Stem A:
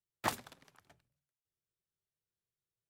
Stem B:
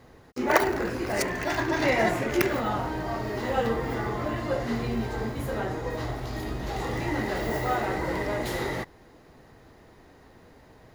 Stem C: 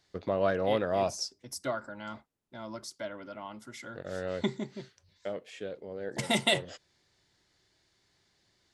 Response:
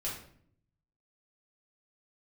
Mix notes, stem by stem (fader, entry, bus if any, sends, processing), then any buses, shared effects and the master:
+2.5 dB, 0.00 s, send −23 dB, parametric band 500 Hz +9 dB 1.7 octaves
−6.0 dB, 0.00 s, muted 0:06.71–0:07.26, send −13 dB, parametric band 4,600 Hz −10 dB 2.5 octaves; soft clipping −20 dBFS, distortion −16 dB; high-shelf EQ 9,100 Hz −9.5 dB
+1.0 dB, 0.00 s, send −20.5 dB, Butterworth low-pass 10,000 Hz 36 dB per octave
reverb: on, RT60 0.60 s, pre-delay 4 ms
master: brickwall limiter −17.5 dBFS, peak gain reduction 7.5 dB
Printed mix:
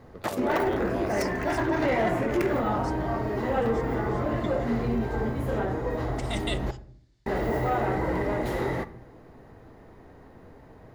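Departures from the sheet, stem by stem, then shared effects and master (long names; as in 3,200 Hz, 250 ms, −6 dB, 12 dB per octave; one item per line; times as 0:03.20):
stem B −6.0 dB → +2.5 dB
stem C +1.0 dB → −7.0 dB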